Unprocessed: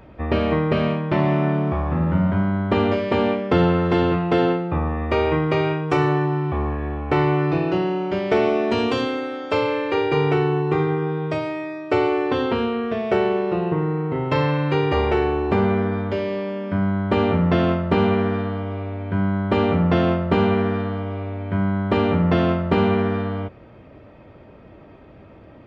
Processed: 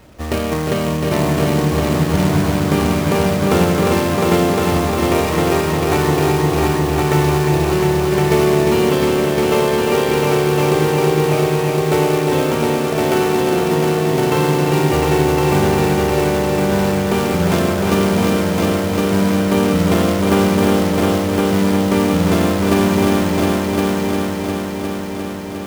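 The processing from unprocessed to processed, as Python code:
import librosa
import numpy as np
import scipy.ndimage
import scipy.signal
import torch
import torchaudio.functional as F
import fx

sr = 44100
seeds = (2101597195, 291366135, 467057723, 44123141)

y = fx.quant_companded(x, sr, bits=4)
y = fx.echo_heads(y, sr, ms=354, heads='all three', feedback_pct=63, wet_db=-6.0)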